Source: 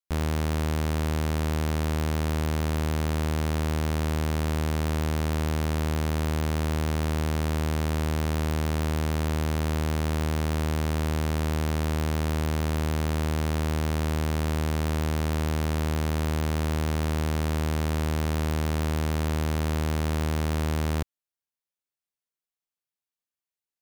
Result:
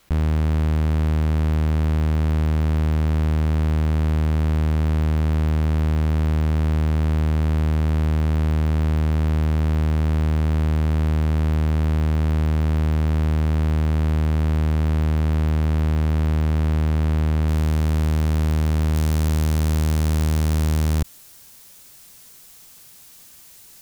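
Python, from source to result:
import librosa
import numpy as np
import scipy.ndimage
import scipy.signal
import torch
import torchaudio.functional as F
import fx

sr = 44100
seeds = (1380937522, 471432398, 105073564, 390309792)

y = fx.bass_treble(x, sr, bass_db=8, treble_db=fx.steps((0.0, -8.0), (17.47, 0.0), (18.94, 7.0)))
y = fx.env_flatten(y, sr, amount_pct=70)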